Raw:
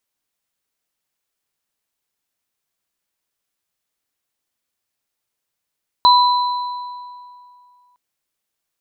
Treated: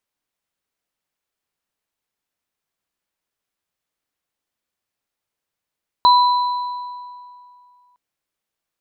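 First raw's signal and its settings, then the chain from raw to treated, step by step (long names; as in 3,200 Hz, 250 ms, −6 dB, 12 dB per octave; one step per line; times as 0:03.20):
inharmonic partials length 1.91 s, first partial 985 Hz, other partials 4,030 Hz, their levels −6 dB, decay 2.38 s, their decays 1.61 s, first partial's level −7 dB
high-shelf EQ 3,800 Hz −7 dB
hum removal 126.1 Hz, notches 3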